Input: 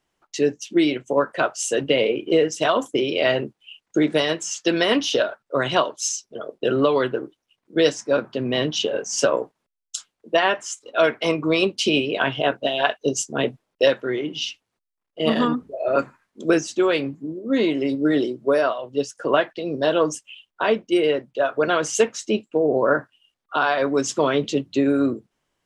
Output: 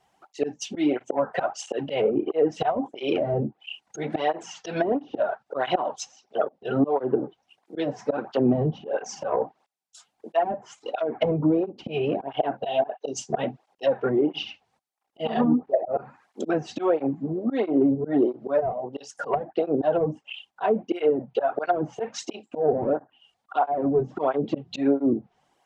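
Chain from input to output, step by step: auto swell 0.282 s; bell 780 Hz +15 dB 0.43 oct; soft clip -14.5 dBFS, distortion -13 dB; treble ducked by the level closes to 350 Hz, closed at -20 dBFS; tape flanging out of phase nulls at 1.5 Hz, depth 3.8 ms; gain +7.5 dB

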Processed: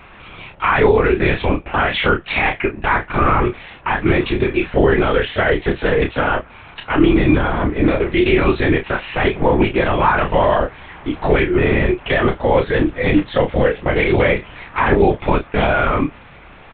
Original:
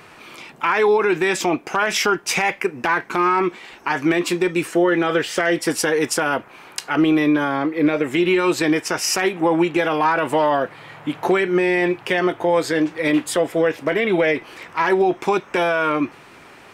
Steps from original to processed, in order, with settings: LPC vocoder at 8 kHz whisper; doubler 30 ms -7 dB; gain +2.5 dB

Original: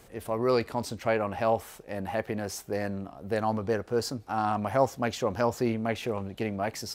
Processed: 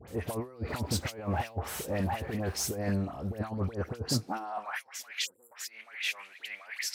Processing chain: 0.52–2.68 G.711 law mismatch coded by mu; 5.19–5.5 spectral delete 550–7100 Hz; negative-ratio compressor -33 dBFS, ratio -0.5; dispersion highs, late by 80 ms, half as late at 1600 Hz; tube stage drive 19 dB, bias 0.25; high-pass sweep 70 Hz -> 2000 Hz, 4.04–4.81

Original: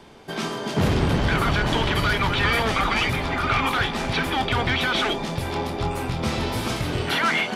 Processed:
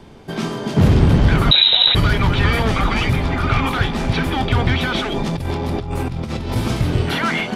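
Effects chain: low shelf 310 Hz +11 dB; 1.51–1.95 inverted band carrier 3900 Hz; 5–6.56 negative-ratio compressor -23 dBFS, ratio -1

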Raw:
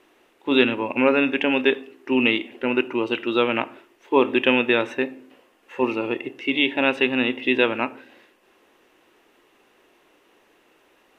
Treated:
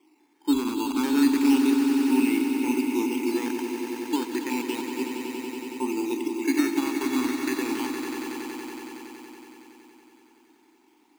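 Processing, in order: 3.48–5.82 level quantiser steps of 22 dB; limiter -12 dBFS, peak gain reduction 8 dB; vowel filter u; decimation with a swept rate 8×, swing 100% 0.32 Hz; swelling echo 93 ms, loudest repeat 5, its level -10 dB; gain +6 dB

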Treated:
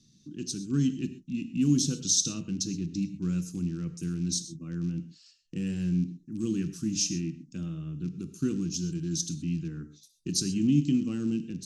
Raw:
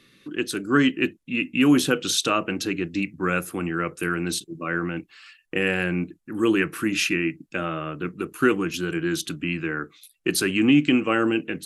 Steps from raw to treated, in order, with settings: rattling part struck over -32 dBFS, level -29 dBFS; EQ curve 210 Hz 0 dB, 590 Hz -28 dB, 2200 Hz -29 dB, 6000 Hz +6 dB, 11000 Hz -19 dB; non-linear reverb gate 0.15 s flat, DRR 10.5 dB

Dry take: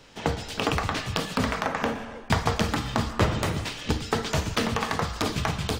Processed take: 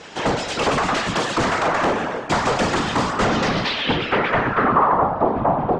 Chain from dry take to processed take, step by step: whisperiser; overdrive pedal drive 27 dB, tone 1000 Hz, clips at -8 dBFS; low-pass sweep 7600 Hz -> 780 Hz, 3.19–5.12

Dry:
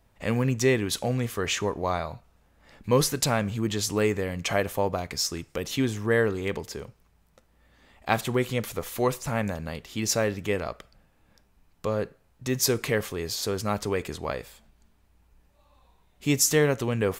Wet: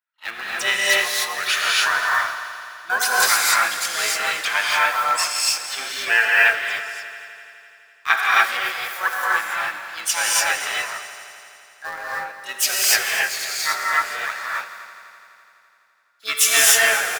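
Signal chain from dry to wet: per-bin expansion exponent 1.5; harmoniser -12 st -9 dB, -3 st -16 dB, +7 st -2 dB; resonant high-pass 1500 Hz, resonance Q 2.7; in parallel at -11 dB: bit-crush 5-bit; on the sum: multi-head echo 84 ms, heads all three, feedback 66%, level -18 dB; non-linear reverb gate 0.32 s rising, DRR -5 dB; gain +2 dB

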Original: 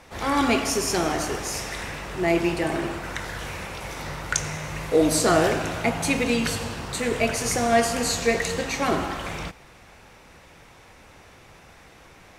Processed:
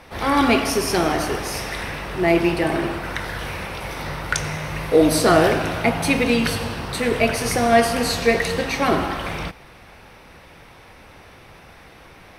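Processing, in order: bell 7100 Hz -14 dB 0.34 oct; gain +4.5 dB

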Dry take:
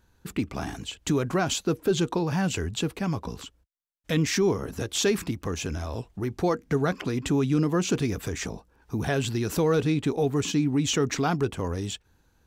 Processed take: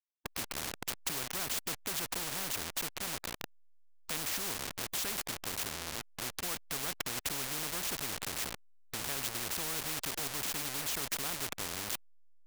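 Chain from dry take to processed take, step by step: level-crossing sampler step -27.5 dBFS; spectral compressor 4:1; gain -2 dB

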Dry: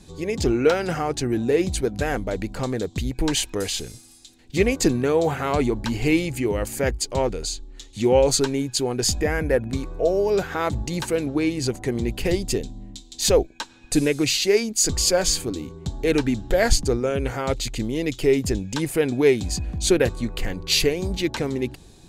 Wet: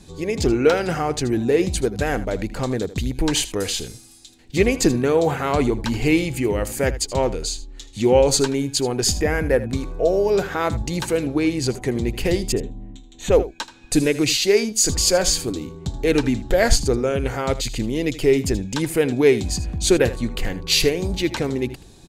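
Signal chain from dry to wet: 12.52–13.32 running mean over 9 samples; echo 79 ms -15.5 dB; gain +2 dB

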